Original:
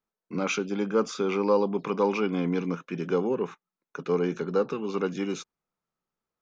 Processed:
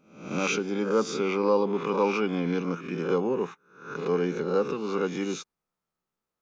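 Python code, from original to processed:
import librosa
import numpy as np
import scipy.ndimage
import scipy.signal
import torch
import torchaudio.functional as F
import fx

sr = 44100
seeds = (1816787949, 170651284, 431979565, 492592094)

y = fx.spec_swells(x, sr, rise_s=0.57)
y = y * librosa.db_to_amplitude(-1.0)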